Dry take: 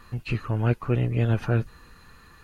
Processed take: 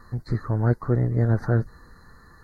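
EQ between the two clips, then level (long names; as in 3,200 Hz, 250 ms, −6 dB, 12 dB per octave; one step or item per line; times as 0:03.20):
elliptic band-stop filter 1,900–4,200 Hz, stop band 60 dB
high-shelf EQ 3,300 Hz −7 dB
+2.0 dB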